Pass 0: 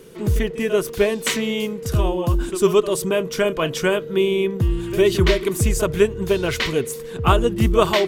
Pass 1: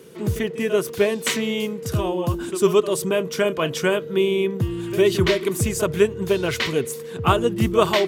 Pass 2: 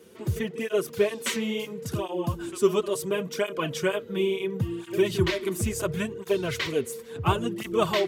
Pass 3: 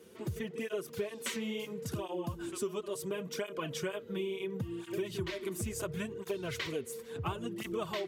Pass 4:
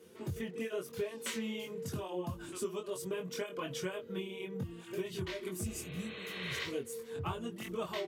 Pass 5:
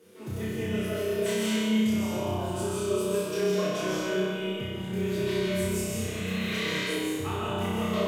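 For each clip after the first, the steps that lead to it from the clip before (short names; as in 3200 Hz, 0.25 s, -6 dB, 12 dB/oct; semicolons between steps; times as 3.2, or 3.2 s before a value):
HPF 86 Hz 24 dB/oct; gain -1 dB
tape flanging out of phase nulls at 0.72 Hz, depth 7.7 ms; gain -3 dB
compressor 4:1, threshold -30 dBFS, peak gain reduction 13 dB; gain -4 dB
doubler 22 ms -4 dB; spectral repair 5.69–6.58, 250–4300 Hz both; gain -3 dB
on a send: flutter echo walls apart 5.5 m, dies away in 1.1 s; on the sum: digital reverb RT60 1.7 s, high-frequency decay 0.65×, pre-delay 0.105 s, DRR -4.5 dB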